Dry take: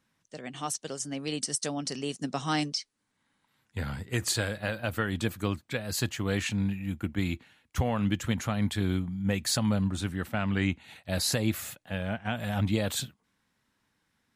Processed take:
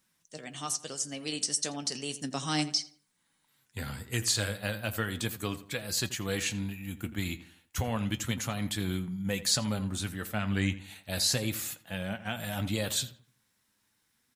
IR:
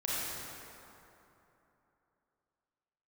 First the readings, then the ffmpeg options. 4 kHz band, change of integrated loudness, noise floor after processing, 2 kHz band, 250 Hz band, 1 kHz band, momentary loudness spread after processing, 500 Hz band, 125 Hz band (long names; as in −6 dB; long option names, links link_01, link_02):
+2.0 dB, −1.5 dB, −74 dBFS, −1.5 dB, −4.0 dB, −3.5 dB, 11 LU, −3.5 dB, −3.5 dB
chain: -filter_complex "[0:a]acrossover=split=7100[link_01][link_02];[link_02]acompressor=threshold=-46dB:ratio=4:attack=1:release=60[link_03];[link_01][link_03]amix=inputs=2:normalize=0,crystalizer=i=3:c=0,flanger=delay=5.2:depth=5:regen=62:speed=0.33:shape=triangular,asplit=2[link_04][link_05];[link_05]adelay=84,lowpass=frequency=2400:poles=1,volume=-14dB,asplit=2[link_06][link_07];[link_07]adelay=84,lowpass=frequency=2400:poles=1,volume=0.39,asplit=2[link_08][link_09];[link_09]adelay=84,lowpass=frequency=2400:poles=1,volume=0.39,asplit=2[link_10][link_11];[link_11]adelay=84,lowpass=frequency=2400:poles=1,volume=0.39[link_12];[link_06][link_08][link_10][link_12]amix=inputs=4:normalize=0[link_13];[link_04][link_13]amix=inputs=2:normalize=0"